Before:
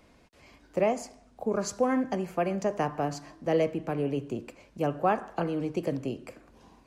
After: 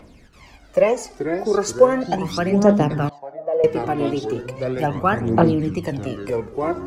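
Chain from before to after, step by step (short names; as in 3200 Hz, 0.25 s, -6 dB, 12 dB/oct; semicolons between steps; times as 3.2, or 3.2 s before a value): echoes that change speed 0.232 s, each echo -4 st, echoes 3, each echo -6 dB; phaser 0.37 Hz, delay 3 ms, feedback 64%; 3.09–3.64 band-pass 670 Hz, Q 3.8; gain +6.5 dB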